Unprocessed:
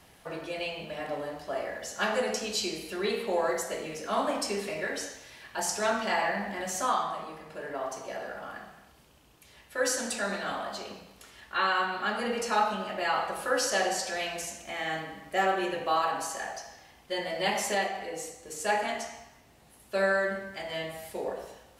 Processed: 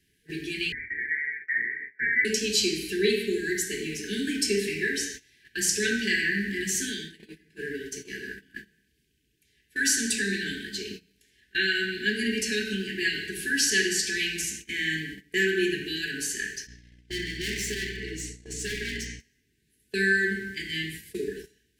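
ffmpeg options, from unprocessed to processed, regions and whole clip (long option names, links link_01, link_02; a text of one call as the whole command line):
ffmpeg -i in.wav -filter_complex "[0:a]asettb=1/sr,asplit=3[link_01][link_02][link_03];[link_01]atrim=end=0.724[link_04];[link_02]atrim=start=0.72:end=2.25,asetpts=PTS-STARTPTS,afade=type=in:duration=0.004:curve=qsin,afade=type=out:start_time=1.526:duration=0.004:curve=qsin,highpass=frequency=360:poles=1,lowpass=frequency=2100:width_type=q:width=0.5098,lowpass=frequency=2100:width_type=q:width=0.6013,lowpass=frequency=2100:width_type=q:width=0.9,lowpass=frequency=2100:width_type=q:width=2.563,afreqshift=-2500[link_05];[link_03]atrim=start=2.246[link_06];[link_04][link_05]acrossfade=duration=0.004:curve1=hsin:curve2=qsin[link_07];[link_07][link_06]acrossfade=duration=0.004:curve1=qsin:curve2=hsin,asettb=1/sr,asplit=3[link_08][link_09][link_10];[link_08]atrim=end=16.674[link_11];[link_09]atrim=start=16.67:end=19.2,asetpts=PTS-STARTPTS,afade=type=in:duration=0.004:curve=qsin,afade=type=out:start_time=2.526:duration=0.004:curve=qsin,lowpass=7100,volume=34dB,asoftclip=hard,volume=-34dB,aeval=exprs='val(0)+0.00447*(sin(2*PI*60*n/s)+sin(2*PI*2*60*n/s)/2+sin(2*PI*3*60*n/s)/3+sin(2*PI*4*60*n/s)/4+sin(2*PI*5*60*n/s)/5)':channel_layout=same[link_12];[link_10]atrim=start=19.196[link_13];[link_11][link_12]acrossfade=duration=0.004:curve1=hsin:curve2=qsin[link_14];[link_14][link_13]acrossfade=duration=0.004:curve1=qsin:curve2=hsin,afftfilt=real='re*(1-between(b*sr/4096,460,1500))':imag='im*(1-between(b*sr/4096,460,1500))':win_size=4096:overlap=0.75,agate=range=-18dB:threshold=-45dB:ratio=16:detection=peak,volume=7dB" out.wav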